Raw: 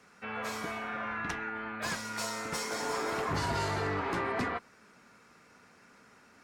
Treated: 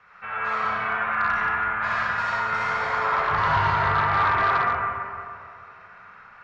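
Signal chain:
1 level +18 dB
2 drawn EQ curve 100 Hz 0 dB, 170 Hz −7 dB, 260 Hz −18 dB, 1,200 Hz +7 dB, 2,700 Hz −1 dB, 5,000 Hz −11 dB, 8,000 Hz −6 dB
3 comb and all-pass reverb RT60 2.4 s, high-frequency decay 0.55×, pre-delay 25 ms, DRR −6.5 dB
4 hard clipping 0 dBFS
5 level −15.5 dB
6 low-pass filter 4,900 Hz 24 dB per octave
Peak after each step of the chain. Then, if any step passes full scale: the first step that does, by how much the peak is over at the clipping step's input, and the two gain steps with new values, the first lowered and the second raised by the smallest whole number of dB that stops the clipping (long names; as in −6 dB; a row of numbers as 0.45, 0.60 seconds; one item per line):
−3.5, −1.0, +7.0, 0.0, −15.5, −14.5 dBFS
step 3, 7.0 dB
step 1 +11 dB, step 5 −8.5 dB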